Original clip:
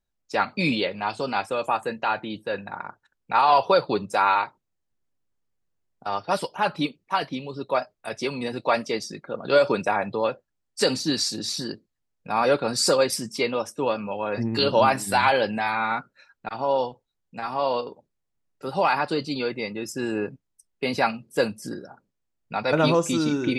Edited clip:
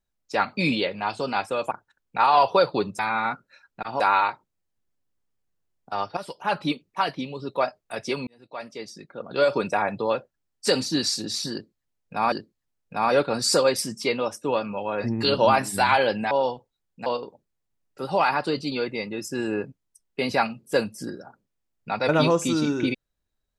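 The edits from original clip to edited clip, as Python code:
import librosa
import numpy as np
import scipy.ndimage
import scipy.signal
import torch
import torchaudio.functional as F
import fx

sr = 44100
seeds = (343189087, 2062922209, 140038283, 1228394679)

y = fx.edit(x, sr, fx.cut(start_s=1.71, length_s=1.15),
    fx.fade_in_from(start_s=6.31, length_s=0.4, floor_db=-15.0),
    fx.fade_in_span(start_s=8.41, length_s=1.56),
    fx.repeat(start_s=11.66, length_s=0.8, count=2),
    fx.move(start_s=15.65, length_s=1.01, to_s=4.14),
    fx.cut(start_s=17.41, length_s=0.29), tone=tone)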